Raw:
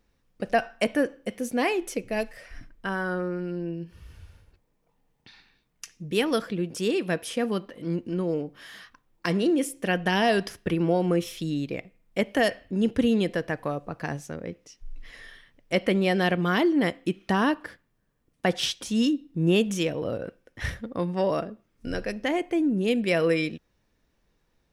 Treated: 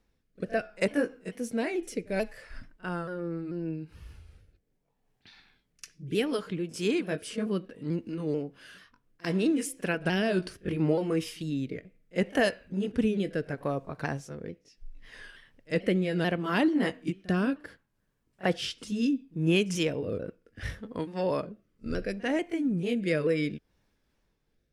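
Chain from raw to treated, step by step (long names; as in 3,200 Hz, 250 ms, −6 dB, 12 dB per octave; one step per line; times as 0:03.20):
pitch shifter swept by a sawtooth −2 semitones, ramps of 439 ms
rotating-speaker cabinet horn 0.7 Hz
echo ahead of the sound 47 ms −23 dB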